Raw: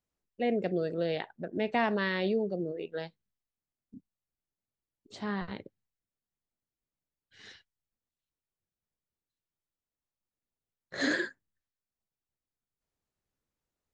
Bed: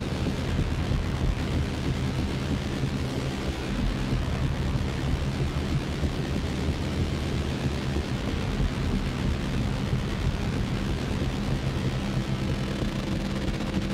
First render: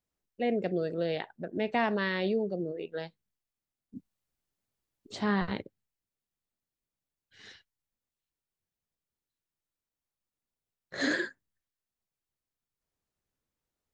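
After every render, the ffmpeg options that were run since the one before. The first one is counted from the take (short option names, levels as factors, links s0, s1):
-filter_complex "[0:a]asettb=1/sr,asplit=3[s0][s1][s2];[s0]atrim=end=3.954[s3];[s1]atrim=start=3.95:end=5.62,asetpts=PTS-STARTPTS,afade=t=in:d=0.004:c=qsin,afade=t=out:st=1.666:d=0.004:c=qsin,acontrast=52[s4];[s2]atrim=start=5.616[s5];[s3][s4]acrossfade=d=0.004:c1=hsin:c2=qsin[s6];[s6][s5]acrossfade=d=0.004:c1=qsin:c2=hsin"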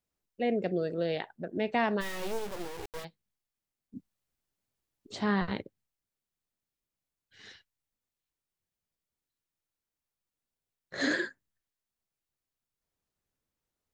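-filter_complex "[0:a]asplit=3[s0][s1][s2];[s0]afade=t=out:st=2:d=0.02[s3];[s1]acrusher=bits=4:dc=4:mix=0:aa=0.000001,afade=t=in:st=2:d=0.02,afade=t=out:st=3.03:d=0.02[s4];[s2]afade=t=in:st=3.03:d=0.02[s5];[s3][s4][s5]amix=inputs=3:normalize=0"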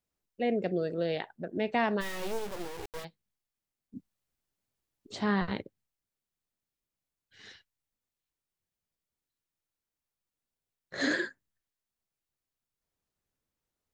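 -af anull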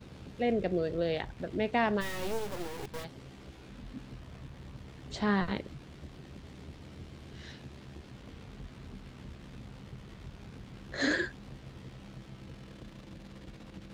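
-filter_complex "[1:a]volume=0.1[s0];[0:a][s0]amix=inputs=2:normalize=0"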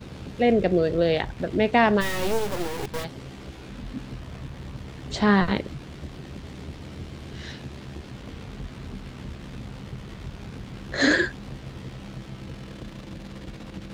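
-af "volume=2.99"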